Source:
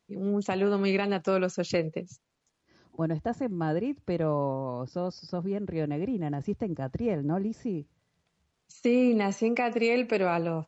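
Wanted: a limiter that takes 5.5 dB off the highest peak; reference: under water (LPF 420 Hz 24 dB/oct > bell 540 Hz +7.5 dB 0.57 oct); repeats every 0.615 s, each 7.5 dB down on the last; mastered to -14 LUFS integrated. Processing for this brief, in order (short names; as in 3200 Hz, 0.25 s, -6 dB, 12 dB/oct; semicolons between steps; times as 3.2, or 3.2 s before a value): limiter -20.5 dBFS; LPF 420 Hz 24 dB/oct; bell 540 Hz +7.5 dB 0.57 oct; feedback echo 0.615 s, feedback 42%, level -7.5 dB; gain +17.5 dB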